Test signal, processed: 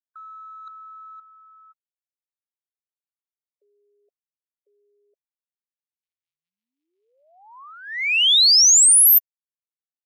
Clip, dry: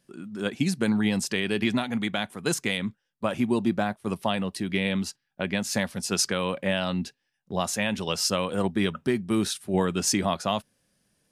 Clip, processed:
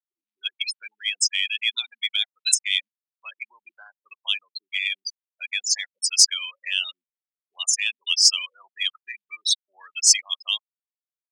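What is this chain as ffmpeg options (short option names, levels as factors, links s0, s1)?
-af "afftfilt=real='re*gte(hypot(re,im),0.0631)':imag='im*gte(hypot(re,im),0.0631)':win_size=1024:overlap=0.75,highpass=f=1300:w=0.5412,highpass=f=1300:w=1.3066,highshelf=f=2400:g=-6,areverse,acompressor=threshold=0.0282:ratio=16,areverse,aexciter=amount=12.6:drive=7.6:freq=2300,volume=0.501"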